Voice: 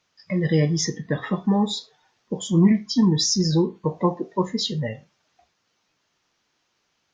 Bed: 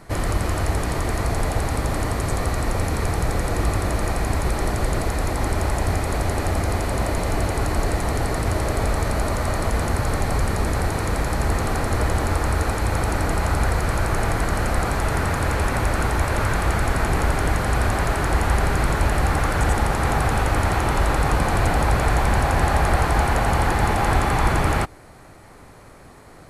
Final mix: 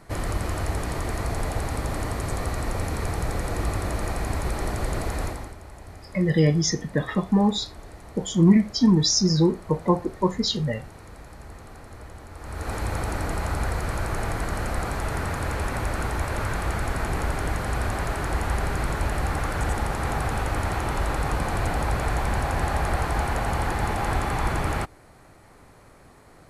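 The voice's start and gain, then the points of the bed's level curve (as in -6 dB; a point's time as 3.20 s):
5.85 s, +0.5 dB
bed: 5.25 s -5 dB
5.58 s -21 dB
12.32 s -21 dB
12.74 s -6 dB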